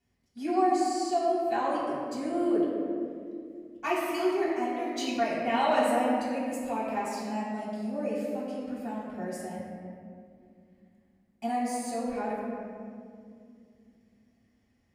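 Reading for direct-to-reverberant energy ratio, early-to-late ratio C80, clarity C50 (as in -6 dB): -9.0 dB, 1.0 dB, -1.0 dB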